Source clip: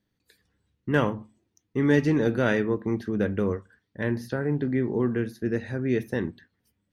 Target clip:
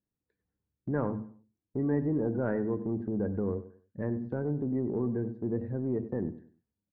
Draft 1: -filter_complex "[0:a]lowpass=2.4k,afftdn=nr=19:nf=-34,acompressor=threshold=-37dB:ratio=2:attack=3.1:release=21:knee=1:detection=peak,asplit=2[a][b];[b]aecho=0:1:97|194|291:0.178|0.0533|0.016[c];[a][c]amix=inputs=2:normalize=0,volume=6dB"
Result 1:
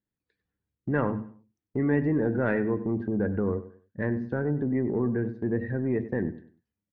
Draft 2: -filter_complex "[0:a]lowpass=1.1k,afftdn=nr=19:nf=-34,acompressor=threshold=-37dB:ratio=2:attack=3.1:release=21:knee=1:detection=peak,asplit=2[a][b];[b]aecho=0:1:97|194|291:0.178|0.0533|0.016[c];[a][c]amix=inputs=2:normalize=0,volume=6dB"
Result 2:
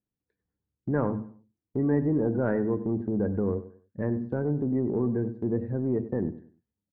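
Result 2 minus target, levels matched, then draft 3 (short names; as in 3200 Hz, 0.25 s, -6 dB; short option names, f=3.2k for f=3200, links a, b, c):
compressor: peak gain reduction -4 dB
-filter_complex "[0:a]lowpass=1.1k,afftdn=nr=19:nf=-34,acompressor=threshold=-45dB:ratio=2:attack=3.1:release=21:knee=1:detection=peak,asplit=2[a][b];[b]aecho=0:1:97|194|291:0.178|0.0533|0.016[c];[a][c]amix=inputs=2:normalize=0,volume=6dB"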